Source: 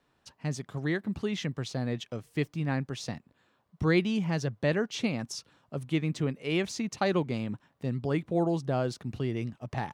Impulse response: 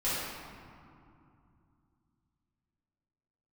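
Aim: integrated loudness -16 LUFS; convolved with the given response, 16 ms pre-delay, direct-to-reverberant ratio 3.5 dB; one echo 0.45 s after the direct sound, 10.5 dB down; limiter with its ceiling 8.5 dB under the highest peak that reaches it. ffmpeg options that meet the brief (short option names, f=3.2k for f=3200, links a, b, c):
-filter_complex "[0:a]alimiter=limit=-21.5dB:level=0:latency=1,aecho=1:1:450:0.299,asplit=2[a][b];[1:a]atrim=start_sample=2205,adelay=16[c];[b][c]afir=irnorm=-1:irlink=0,volume=-12.5dB[d];[a][d]amix=inputs=2:normalize=0,volume=15.5dB"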